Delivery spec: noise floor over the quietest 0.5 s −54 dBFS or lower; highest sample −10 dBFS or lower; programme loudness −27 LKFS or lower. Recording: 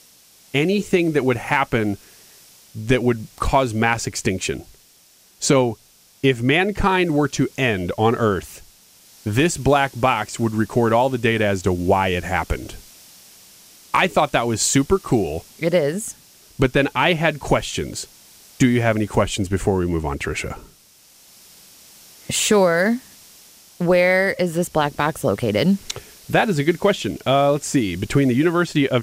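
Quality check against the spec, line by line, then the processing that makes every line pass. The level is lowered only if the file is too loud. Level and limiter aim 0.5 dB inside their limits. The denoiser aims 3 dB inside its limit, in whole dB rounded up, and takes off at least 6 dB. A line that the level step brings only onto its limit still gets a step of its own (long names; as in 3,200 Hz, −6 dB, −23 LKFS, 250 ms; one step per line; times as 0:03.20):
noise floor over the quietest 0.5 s −53 dBFS: out of spec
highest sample −4.5 dBFS: out of spec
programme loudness −19.5 LKFS: out of spec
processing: level −8 dB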